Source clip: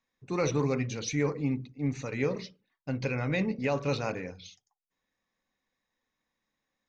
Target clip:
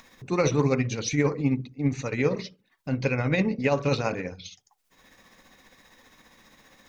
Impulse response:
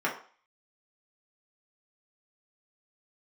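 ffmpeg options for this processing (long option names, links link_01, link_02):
-af "tremolo=f=15:d=0.45,acompressor=mode=upward:threshold=-43dB:ratio=2.5,volume=7dB"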